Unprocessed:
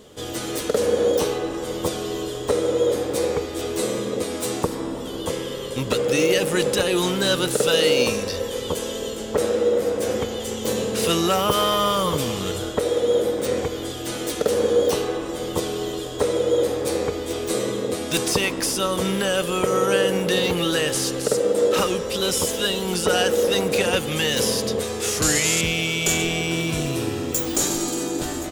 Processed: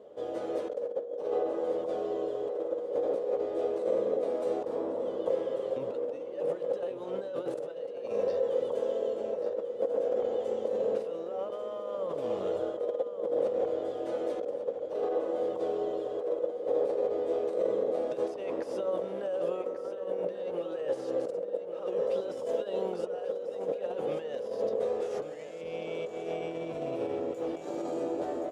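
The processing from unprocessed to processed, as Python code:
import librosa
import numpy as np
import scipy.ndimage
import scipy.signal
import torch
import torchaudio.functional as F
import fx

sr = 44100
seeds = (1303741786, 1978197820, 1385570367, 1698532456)

y = fx.over_compress(x, sr, threshold_db=-25.0, ratio=-0.5)
y = fx.bandpass_q(y, sr, hz=570.0, q=3.4)
y = fx.echo_feedback(y, sr, ms=1142, feedback_pct=33, wet_db=-10.0)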